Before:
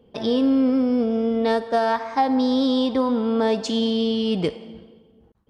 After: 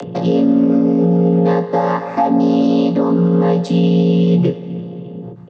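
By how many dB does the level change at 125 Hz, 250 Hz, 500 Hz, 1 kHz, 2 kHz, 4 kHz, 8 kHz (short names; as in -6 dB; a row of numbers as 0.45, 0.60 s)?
+21.5 dB, +7.0 dB, +6.0 dB, +4.0 dB, +1.5 dB, -4.0 dB, n/a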